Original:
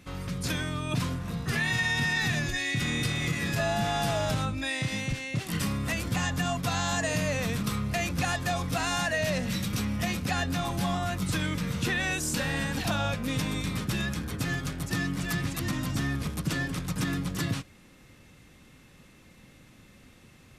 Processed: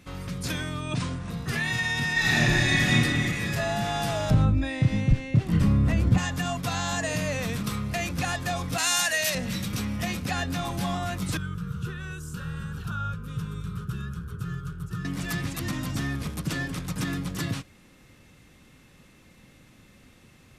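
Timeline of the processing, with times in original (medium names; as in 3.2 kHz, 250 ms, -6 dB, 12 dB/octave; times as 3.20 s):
0.81–1.30 s: brick-wall FIR low-pass 10 kHz
2.13–2.92 s: reverb throw, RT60 2.6 s, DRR -7 dB
4.30–6.18 s: tilt EQ -3.5 dB/octave
8.78–9.35 s: tilt EQ +4 dB/octave
11.37–15.05 s: FFT filter 170 Hz 0 dB, 280 Hz -21 dB, 410 Hz -3 dB, 660 Hz -27 dB, 1.4 kHz +2 dB, 2 kHz -23 dB, 2.9 kHz -12 dB, 4.5 kHz -17 dB, 12 kHz -12 dB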